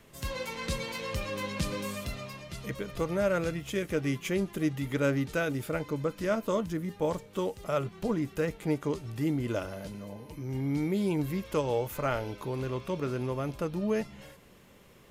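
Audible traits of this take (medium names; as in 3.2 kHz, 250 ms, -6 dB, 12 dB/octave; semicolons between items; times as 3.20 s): noise floor -56 dBFS; spectral tilt -6.0 dB/octave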